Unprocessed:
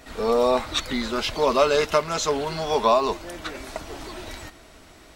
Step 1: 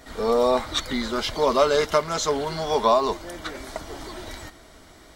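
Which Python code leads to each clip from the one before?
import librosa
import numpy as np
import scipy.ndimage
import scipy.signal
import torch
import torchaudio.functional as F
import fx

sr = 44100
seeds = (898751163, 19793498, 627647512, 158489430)

y = fx.notch(x, sr, hz=2600.0, q=6.3)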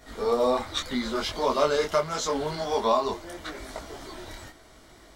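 y = fx.detune_double(x, sr, cents=28)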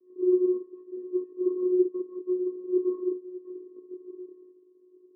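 y = fx.vocoder(x, sr, bands=8, carrier='square', carrier_hz=364.0)
y = scipy.signal.sosfilt(scipy.signal.ellip(3, 1.0, 80, [220.0, 670.0], 'bandpass', fs=sr, output='sos'), y)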